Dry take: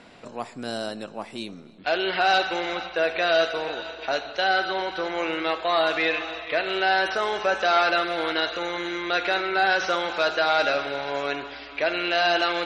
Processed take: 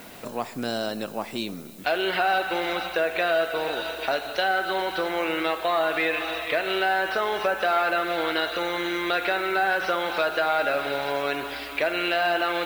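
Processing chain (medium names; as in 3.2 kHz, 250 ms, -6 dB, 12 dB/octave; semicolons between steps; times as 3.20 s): low-pass that closes with the level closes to 2.7 kHz, closed at -18.5 dBFS; compression 2:1, threshold -30 dBFS, peak gain reduction 8 dB; added noise blue -55 dBFS; trim +5 dB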